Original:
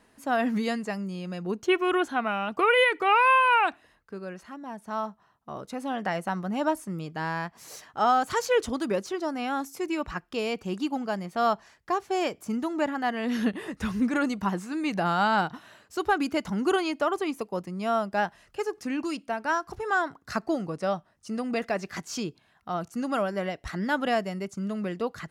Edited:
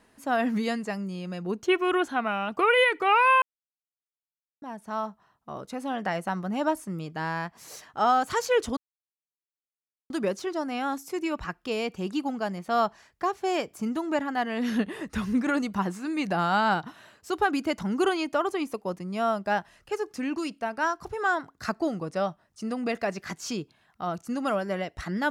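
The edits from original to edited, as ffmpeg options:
-filter_complex "[0:a]asplit=4[a][b][c][d];[a]atrim=end=3.42,asetpts=PTS-STARTPTS,afade=t=out:st=3.416:d=0.004:c=hsin[e];[b]atrim=start=3.42:end=4.62,asetpts=PTS-STARTPTS,volume=0[f];[c]atrim=start=4.62:end=8.77,asetpts=PTS-STARTPTS,afade=t=in:d=0.004:c=hsin,afade=t=out:st=4.146:d=0.004:c=hsin,apad=pad_dur=1.33[g];[d]atrim=start=8.77,asetpts=PTS-STARTPTS,afade=t=in:d=0.004:c=hsin[h];[e][f][g][h]concat=n=4:v=0:a=1"

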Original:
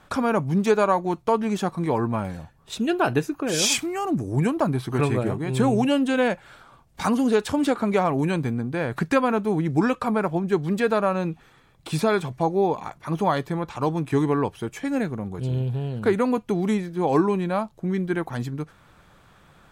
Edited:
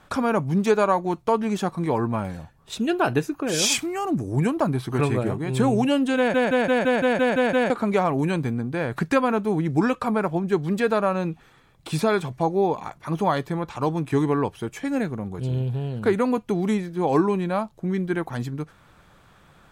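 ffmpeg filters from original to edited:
-filter_complex "[0:a]asplit=10[a][b][c][d][e][f][g][h][i][j];[a]atrim=end=6.342[k];[b]atrim=start=6.168:end=6.342[l];[c]atrim=start=6.168:end=6.342[m];[d]atrim=start=6.168:end=6.342[n];[e]atrim=start=6.168:end=6.342[o];[f]atrim=start=6.168:end=6.342[p];[g]atrim=start=6.168:end=6.342[q];[h]atrim=start=6.168:end=6.342[r];[i]atrim=start=6.168:end=6.342[s];[j]atrim=start=7.698[t];[k][l]acrossfade=d=0.004:c1=hsin:c2=hsin[u];[u][m]acrossfade=d=0.004:c1=hsin:c2=hsin[v];[v][n]acrossfade=d=0.004:c1=hsin:c2=hsin[w];[w][o]acrossfade=d=0.004:c1=hsin:c2=hsin[x];[x][p]acrossfade=d=0.004:c1=hsin:c2=hsin[y];[y][q]acrossfade=d=0.004:c1=hsin:c2=hsin[z];[z][r]acrossfade=d=0.004:c1=hsin:c2=hsin[aa];[aa][s]acrossfade=d=0.004:c1=hsin:c2=hsin[ab];[ab][t]acrossfade=d=0.004:c1=hsin:c2=hsin"

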